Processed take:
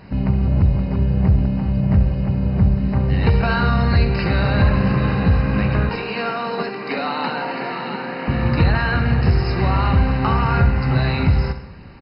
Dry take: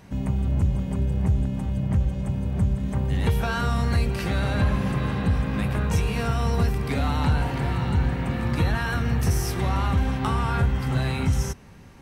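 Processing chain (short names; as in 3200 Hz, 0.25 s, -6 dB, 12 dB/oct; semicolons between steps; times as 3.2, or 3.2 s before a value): 5.89–8.28 Bessel high-pass 330 Hz, order 8; feedback echo 67 ms, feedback 55%, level -12 dB; gain +6.5 dB; MP2 32 kbps 48000 Hz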